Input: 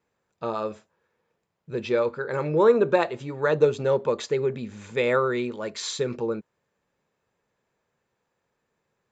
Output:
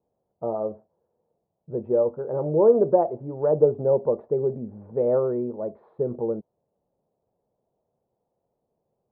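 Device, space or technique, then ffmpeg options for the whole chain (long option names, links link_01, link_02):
under water: -af "lowpass=frequency=770:width=0.5412,lowpass=frequency=770:width=1.3066,equalizer=frequency=690:width_type=o:width=0.55:gain=7"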